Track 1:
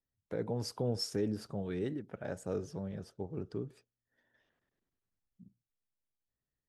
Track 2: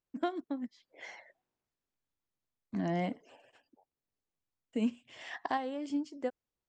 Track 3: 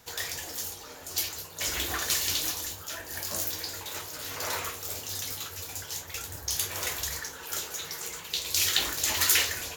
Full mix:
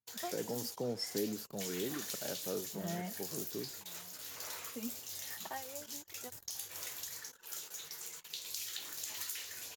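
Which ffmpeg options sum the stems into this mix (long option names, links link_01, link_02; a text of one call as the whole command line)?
ffmpeg -i stem1.wav -i stem2.wav -i stem3.wav -filter_complex "[0:a]highpass=180,volume=-2.5dB[link_01];[1:a]equalizer=frequency=300:width_type=o:width=0.39:gain=-10.5,asplit=2[link_02][link_03];[link_03]adelay=2.7,afreqshift=0.33[link_04];[link_02][link_04]amix=inputs=2:normalize=1,volume=-5.5dB,asplit=2[link_05][link_06];[link_06]volume=-22dB[link_07];[2:a]highshelf=frequency=3100:gain=8,acompressor=threshold=-24dB:ratio=6,volume=-15dB,asplit=2[link_08][link_09];[link_09]volume=-16dB[link_10];[link_07][link_10]amix=inputs=2:normalize=0,aecho=0:1:1040:1[link_11];[link_01][link_05][link_08][link_11]amix=inputs=4:normalize=0,highpass=frequency=100:width=0.5412,highpass=frequency=100:width=1.3066,anlmdn=0.00251" out.wav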